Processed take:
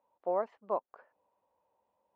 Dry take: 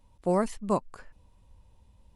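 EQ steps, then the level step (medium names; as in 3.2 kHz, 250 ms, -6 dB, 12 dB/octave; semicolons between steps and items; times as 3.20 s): ladder band-pass 780 Hz, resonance 30%; distance through air 75 m; +6.5 dB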